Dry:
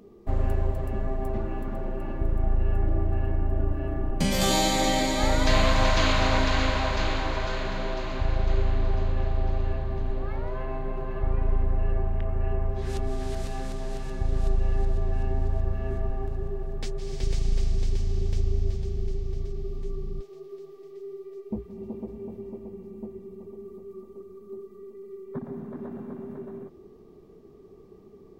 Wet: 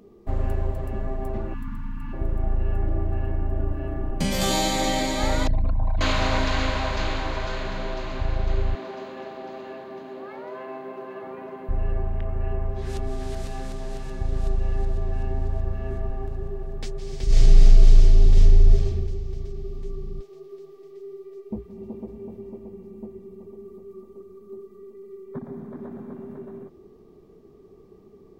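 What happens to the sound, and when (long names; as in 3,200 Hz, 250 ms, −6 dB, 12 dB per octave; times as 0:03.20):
0:01.54–0:02.13: time-frequency box erased 310–850 Hz
0:05.47–0:06.01: spectral envelope exaggerated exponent 3
0:08.75–0:11.69: high-pass filter 230 Hz 24 dB per octave
0:17.25–0:18.85: thrown reverb, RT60 1 s, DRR −8 dB
0:25.30–0:26.12: notch filter 2,800 Hz, Q 16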